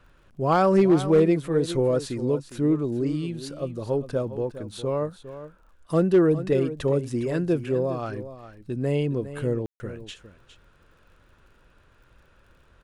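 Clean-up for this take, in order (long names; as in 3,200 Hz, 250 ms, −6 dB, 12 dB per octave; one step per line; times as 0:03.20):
clipped peaks rebuilt −11.5 dBFS
click removal
ambience match 0:09.66–0:09.80
echo removal 408 ms −13 dB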